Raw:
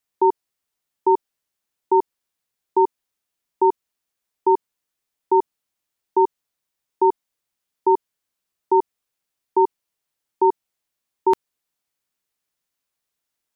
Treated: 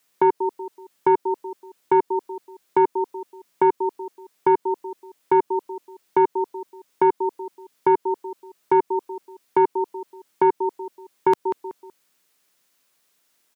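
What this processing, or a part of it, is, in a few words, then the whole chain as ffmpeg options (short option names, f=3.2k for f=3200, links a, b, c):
mastering chain: -filter_complex "[0:a]highpass=180,equalizer=f=810:t=o:w=0.37:g=-2.5,asplit=2[a][b];[b]adelay=188,lowpass=f=1.4k:p=1,volume=-20dB,asplit=2[c][d];[d]adelay=188,lowpass=f=1.4k:p=1,volume=0.34,asplit=2[e][f];[f]adelay=188,lowpass=f=1.4k:p=1,volume=0.34[g];[a][c][e][g]amix=inputs=4:normalize=0,acompressor=threshold=-21dB:ratio=2.5,asoftclip=type=tanh:threshold=-14dB,alimiter=level_in=23dB:limit=-1dB:release=50:level=0:latency=1,volume=-8.5dB"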